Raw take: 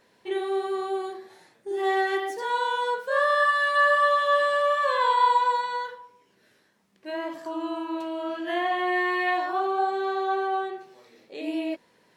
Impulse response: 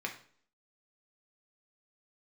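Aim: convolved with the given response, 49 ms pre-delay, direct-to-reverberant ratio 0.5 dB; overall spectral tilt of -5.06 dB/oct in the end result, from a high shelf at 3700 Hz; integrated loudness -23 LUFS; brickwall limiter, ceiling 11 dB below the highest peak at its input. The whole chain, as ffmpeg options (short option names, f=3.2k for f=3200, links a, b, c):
-filter_complex "[0:a]highshelf=f=3.7k:g=4.5,alimiter=limit=-21dB:level=0:latency=1,asplit=2[a][b];[1:a]atrim=start_sample=2205,adelay=49[c];[b][c]afir=irnorm=-1:irlink=0,volume=-3.5dB[d];[a][d]amix=inputs=2:normalize=0,volume=3.5dB"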